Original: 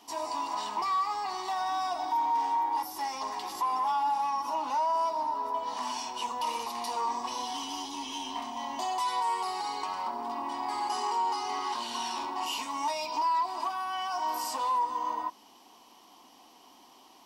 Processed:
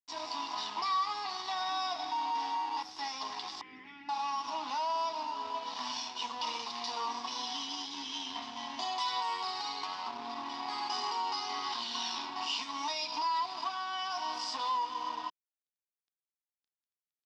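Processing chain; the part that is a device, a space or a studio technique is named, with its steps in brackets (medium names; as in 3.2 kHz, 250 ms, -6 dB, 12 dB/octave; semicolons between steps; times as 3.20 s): blown loudspeaker (crossover distortion -45.5 dBFS; cabinet simulation 120–5600 Hz, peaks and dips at 180 Hz -5 dB, 370 Hz -7 dB, 560 Hz -9 dB, 900 Hz -5 dB, 3.6 kHz +7 dB, 5.1 kHz +7 dB); 3.61–4.09 s: FFT filter 370 Hz 0 dB, 680 Hz -24 dB, 1.1 kHz -27 dB, 2 kHz +4 dB, 4.1 kHz -24 dB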